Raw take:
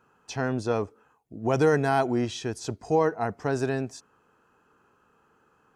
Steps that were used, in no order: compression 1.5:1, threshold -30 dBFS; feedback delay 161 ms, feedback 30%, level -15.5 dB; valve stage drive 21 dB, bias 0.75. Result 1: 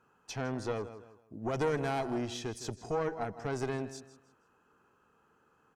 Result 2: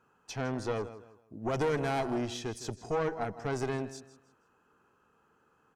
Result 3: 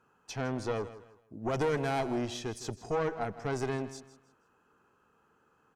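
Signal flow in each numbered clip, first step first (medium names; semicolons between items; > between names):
feedback delay > compression > valve stage; feedback delay > valve stage > compression; valve stage > feedback delay > compression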